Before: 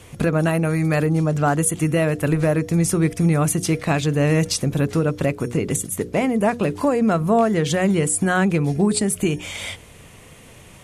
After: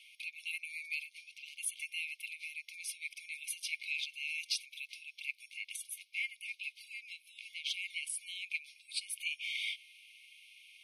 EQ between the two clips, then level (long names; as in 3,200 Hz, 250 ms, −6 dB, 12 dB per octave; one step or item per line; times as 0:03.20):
moving average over 6 samples
linear-phase brick-wall high-pass 2,100 Hz
−2.5 dB